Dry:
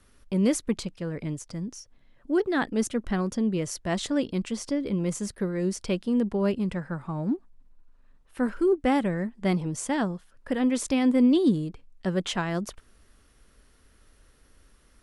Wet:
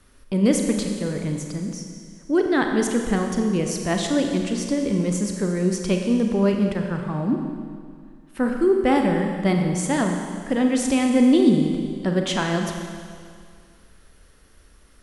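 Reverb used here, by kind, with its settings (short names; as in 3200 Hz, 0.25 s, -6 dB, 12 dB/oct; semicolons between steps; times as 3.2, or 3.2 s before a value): Schroeder reverb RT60 2.1 s, combs from 30 ms, DRR 3 dB; gain +4 dB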